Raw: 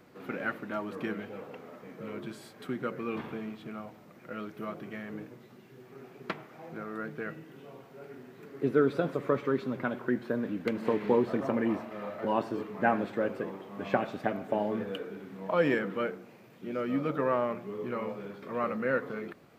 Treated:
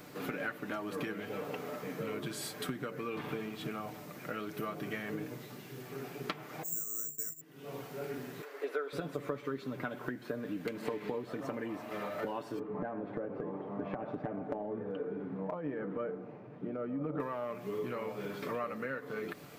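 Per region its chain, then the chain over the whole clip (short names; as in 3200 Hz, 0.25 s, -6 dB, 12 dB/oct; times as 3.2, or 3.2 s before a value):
6.63–7.41 low shelf 330 Hz +9.5 dB + careless resampling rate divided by 6×, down filtered, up zero stuff + expander -25 dBFS
8.42–8.93 HPF 520 Hz 24 dB/oct + high shelf 3800 Hz -9.5 dB
12.59–17.2 LPF 1000 Hz + compressor, threshold -31 dBFS
whole clip: high shelf 4000 Hz +10.5 dB; compressor 12:1, threshold -40 dBFS; comb 6.8 ms, depth 41%; gain +5.5 dB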